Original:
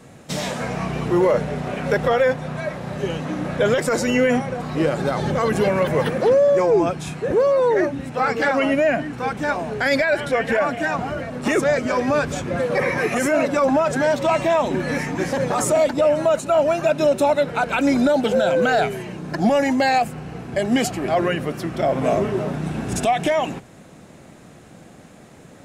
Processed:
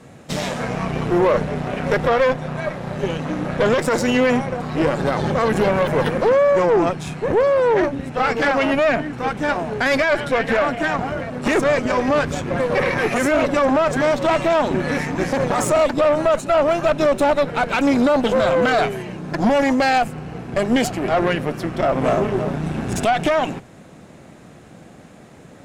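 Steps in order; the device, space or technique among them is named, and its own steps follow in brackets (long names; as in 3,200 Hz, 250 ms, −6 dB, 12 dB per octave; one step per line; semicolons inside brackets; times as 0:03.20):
tube preamp driven hard (tube saturation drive 17 dB, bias 0.75; high-shelf EQ 5,300 Hz −5 dB)
level +6 dB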